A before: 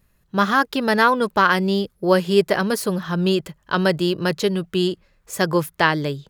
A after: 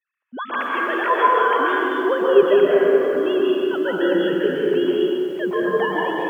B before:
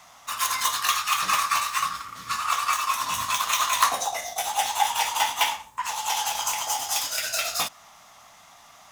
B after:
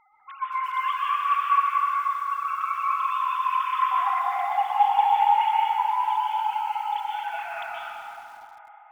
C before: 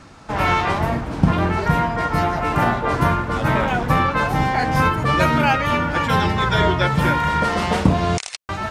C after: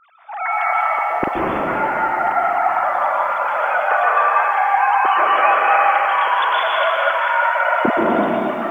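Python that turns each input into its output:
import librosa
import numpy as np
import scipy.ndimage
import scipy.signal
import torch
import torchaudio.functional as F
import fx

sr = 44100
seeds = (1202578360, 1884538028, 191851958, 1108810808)

p1 = fx.sine_speech(x, sr)
p2 = fx.low_shelf(p1, sr, hz=430.0, db=2.5)
p3 = p2 + fx.echo_bbd(p2, sr, ms=259, stages=2048, feedback_pct=75, wet_db=-17.0, dry=0)
p4 = fx.rev_plate(p3, sr, seeds[0], rt60_s=3.0, hf_ratio=0.5, predelay_ms=115, drr_db=-5.5)
p5 = fx.echo_crushed(p4, sr, ms=234, feedback_pct=35, bits=6, wet_db=-14)
y = p5 * 10.0 ** (-6.0 / 20.0)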